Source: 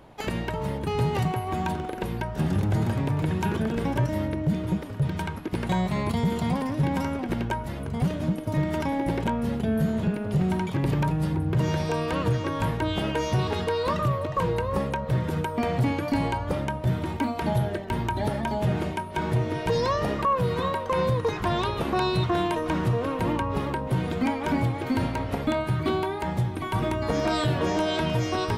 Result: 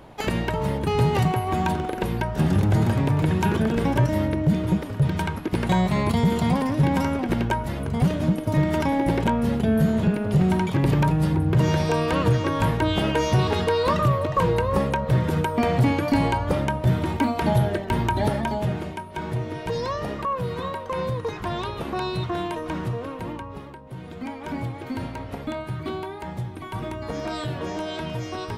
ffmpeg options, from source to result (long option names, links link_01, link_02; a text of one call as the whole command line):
ffmpeg -i in.wav -af "volume=14dB,afade=type=out:start_time=18.25:duration=0.56:silence=0.421697,afade=type=out:start_time=22.78:duration=1.04:silence=0.266073,afade=type=in:start_time=23.82:duration=0.8:silence=0.334965" out.wav